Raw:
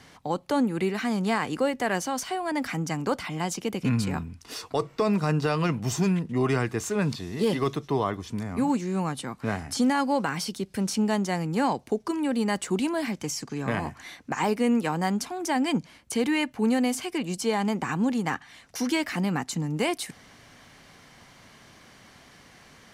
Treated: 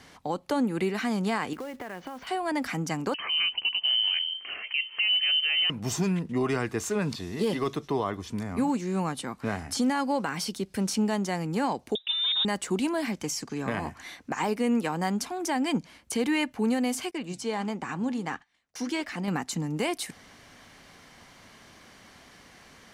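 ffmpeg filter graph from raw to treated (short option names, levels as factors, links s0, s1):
-filter_complex "[0:a]asettb=1/sr,asplit=3[s0][s1][s2];[s0]atrim=end=1.534[s3];[s1]atrim=start=1.53:end=2.27,asetpts=PTS-STARTPTS,afade=t=in:d=0.004:c=qsin,afade=t=out:st=0.736:d=0.004:c=qsin,lowpass=f=3000:w=0.5412,lowpass=f=3000:w=1.3066,acompressor=threshold=0.0224:ratio=16:attack=3.2:release=140:knee=1:detection=peak,acrusher=bits=4:mode=log:mix=0:aa=0.000001[s4];[s2]atrim=start=2.266[s5];[s3][s4]acrossfade=d=0.004:c1=hsin:c2=qsin[s6];[s6][s5]acrossfade=d=0.004:c1=qsin:c2=hsin,asettb=1/sr,asplit=3[s7][s8][s9];[s7]atrim=end=3.144[s10];[s8]atrim=start=3.14:end=5.7,asetpts=PTS-STARTPTS,afade=t=in:d=0.004:c=qsin,afade=t=out:st=2.556:d=0.004:c=qsin,tiltshelf=f=1200:g=6.5,acompressor=mode=upward:threshold=0.0447:ratio=2.5:attack=3.2:release=140:knee=2.83:detection=peak,lowpass=f=2700:t=q:w=0.5098,lowpass=f=2700:t=q:w=0.6013,lowpass=f=2700:t=q:w=0.9,lowpass=f=2700:t=q:w=2.563,afreqshift=-3200[s11];[s9]atrim=start=5.696[s12];[s10][s11]acrossfade=d=0.004:c1=hsin:c2=qsin[s13];[s13][s12]acrossfade=d=0.004:c1=qsin:c2=hsin,asettb=1/sr,asplit=3[s14][s15][s16];[s14]atrim=end=11.954[s17];[s15]atrim=start=11.95:end=12.45,asetpts=PTS-STARTPTS,afade=t=in:d=0.004:c=qsin,afade=t=out:st=0.496:d=0.004:c=qsin,aeval=exprs='clip(val(0),-1,0.0562)':c=same,lowpass=f=3300:t=q:w=0.5098,lowpass=f=3300:t=q:w=0.6013,lowpass=f=3300:t=q:w=0.9,lowpass=f=3300:t=q:w=2.563,afreqshift=-3900[s18];[s16]atrim=start=12.446[s19];[s17][s18]acrossfade=d=0.004:c1=hsin:c2=qsin[s20];[s20][s19]acrossfade=d=0.004:c1=qsin:c2=hsin,asettb=1/sr,asplit=3[s21][s22][s23];[s21]atrim=end=17.114[s24];[s22]atrim=start=17.11:end=19.28,asetpts=PTS-STARTPTS,afade=t=in:d=0.004:c=qsin,afade=t=out:st=2.166:d=0.004:c=qsin,agate=range=0.1:threshold=0.00447:ratio=16:release=100:detection=peak,equalizer=f=13000:t=o:w=0.5:g=-11,flanger=delay=1.1:depth=7.1:regen=87:speed=1.5:shape=sinusoidal[s25];[s23]atrim=start=19.276[s26];[s24][s25]acrossfade=d=0.004:c1=hsin:c2=qsin[s27];[s27][s26]acrossfade=d=0.004:c1=qsin:c2=hsin,equalizer=f=130:t=o:w=0.56:g=-5,alimiter=limit=0.126:level=0:latency=1:release=170"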